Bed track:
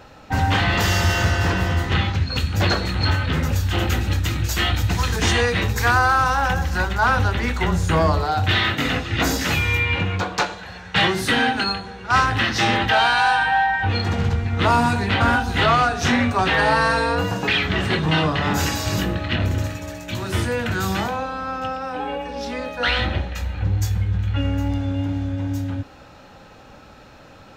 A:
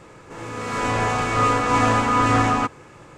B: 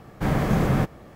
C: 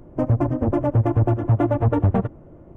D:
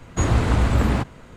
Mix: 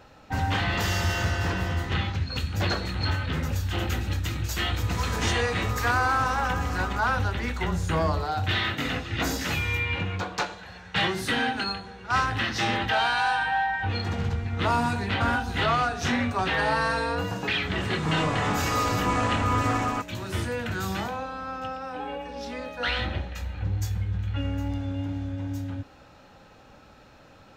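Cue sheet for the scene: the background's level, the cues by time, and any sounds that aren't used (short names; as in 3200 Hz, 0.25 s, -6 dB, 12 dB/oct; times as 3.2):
bed track -7 dB
4.34 add A -8 dB + compressor, threshold -22 dBFS
17.35 add A -7.5 dB
not used: B, C, D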